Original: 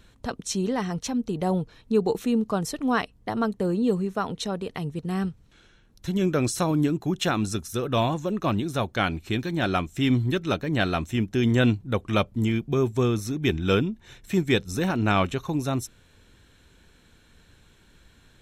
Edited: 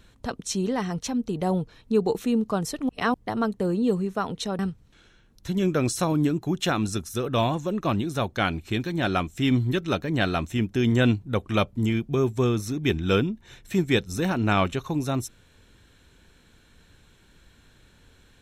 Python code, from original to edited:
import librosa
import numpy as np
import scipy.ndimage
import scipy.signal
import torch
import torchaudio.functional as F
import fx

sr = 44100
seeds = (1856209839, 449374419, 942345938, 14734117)

y = fx.edit(x, sr, fx.reverse_span(start_s=2.89, length_s=0.25),
    fx.cut(start_s=4.59, length_s=0.59), tone=tone)